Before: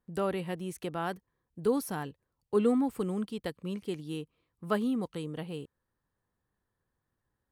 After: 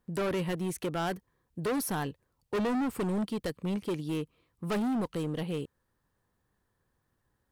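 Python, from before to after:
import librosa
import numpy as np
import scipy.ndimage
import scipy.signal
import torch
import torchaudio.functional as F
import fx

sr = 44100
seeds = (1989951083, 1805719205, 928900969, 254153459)

y = np.clip(10.0 ** (33.5 / 20.0) * x, -1.0, 1.0) / 10.0 ** (33.5 / 20.0)
y = y * librosa.db_to_amplitude(6.0)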